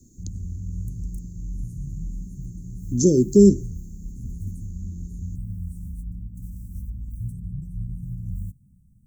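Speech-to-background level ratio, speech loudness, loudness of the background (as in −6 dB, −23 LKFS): 17.5 dB, −17.5 LKFS, −35.0 LKFS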